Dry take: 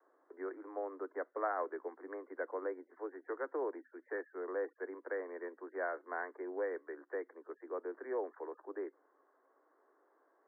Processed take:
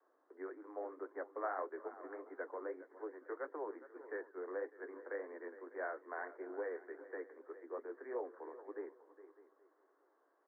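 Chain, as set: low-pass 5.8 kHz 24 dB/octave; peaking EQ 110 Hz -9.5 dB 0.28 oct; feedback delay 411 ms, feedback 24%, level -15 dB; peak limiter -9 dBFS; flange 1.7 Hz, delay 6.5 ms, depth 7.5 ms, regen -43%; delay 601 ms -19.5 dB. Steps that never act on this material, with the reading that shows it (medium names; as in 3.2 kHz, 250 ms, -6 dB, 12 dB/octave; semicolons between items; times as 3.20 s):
low-pass 5.8 kHz: input has nothing above 2 kHz; peaking EQ 110 Hz: input has nothing below 240 Hz; peak limiter -9 dBFS: peak at its input -23.0 dBFS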